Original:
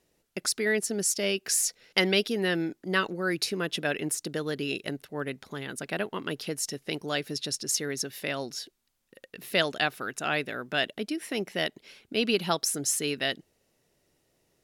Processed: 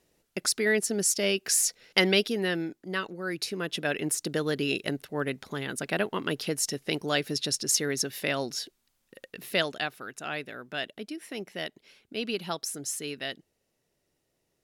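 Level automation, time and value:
0:02.12 +1.5 dB
0:03.07 −6 dB
0:04.33 +3 dB
0:09.25 +3 dB
0:09.94 −6 dB

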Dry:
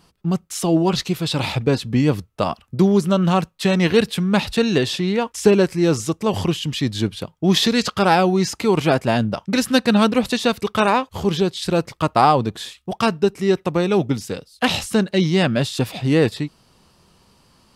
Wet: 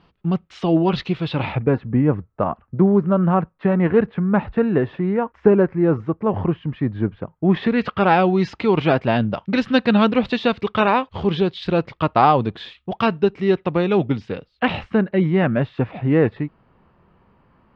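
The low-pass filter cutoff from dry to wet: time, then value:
low-pass filter 24 dB per octave
0:01.19 3,400 Hz
0:01.86 1,700 Hz
0:07.30 1,700 Hz
0:08.29 3,500 Hz
0:14.03 3,500 Hz
0:15.13 2,100 Hz

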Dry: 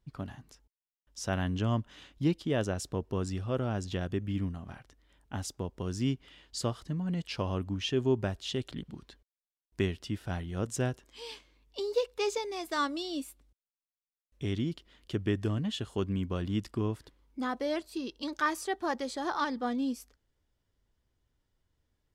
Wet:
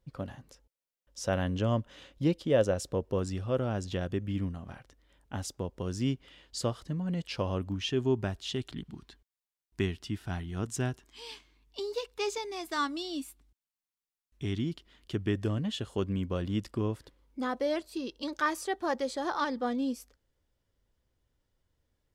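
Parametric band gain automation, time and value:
parametric band 530 Hz 0.29 octaves
+12.5 dB
from 0:03.19 +5 dB
from 0:07.72 −5.5 dB
from 0:08.57 −12 dB
from 0:14.64 −4 dB
from 0:15.35 +5.5 dB

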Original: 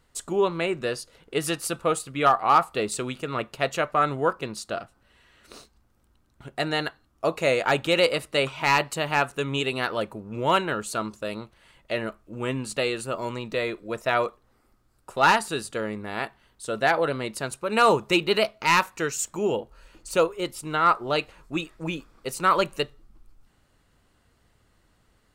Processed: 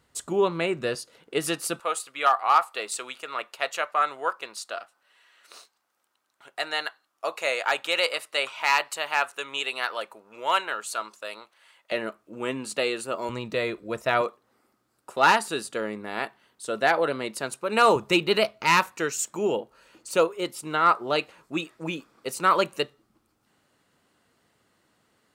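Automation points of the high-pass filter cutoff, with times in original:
75 Hz
from 0:00.95 180 Hz
from 0:01.80 750 Hz
from 0:11.92 240 Hz
from 0:13.29 63 Hz
from 0:14.21 200 Hz
from 0:17.96 81 Hz
from 0:18.92 180 Hz

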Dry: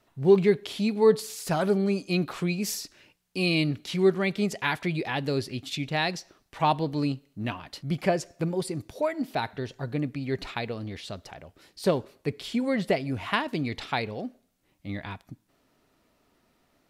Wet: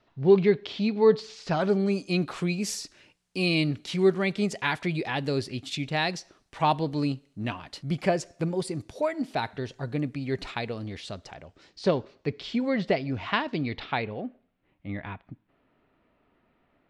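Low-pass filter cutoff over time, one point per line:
low-pass filter 24 dB per octave
0:01.46 5,000 Hz
0:01.98 10,000 Hz
0:10.98 10,000 Hz
0:11.99 5,600 Hz
0:13.45 5,600 Hz
0:14.25 2,900 Hz

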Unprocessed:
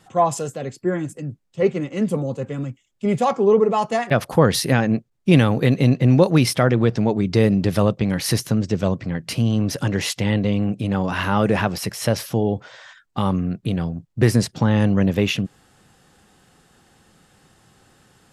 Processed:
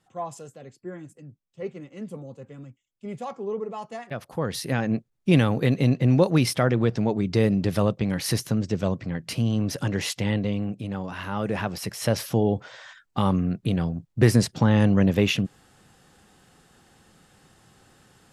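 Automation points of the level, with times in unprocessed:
0:04.27 −15 dB
0:04.96 −4.5 dB
0:10.29 −4.5 dB
0:11.19 −11.5 dB
0:12.29 −1.5 dB

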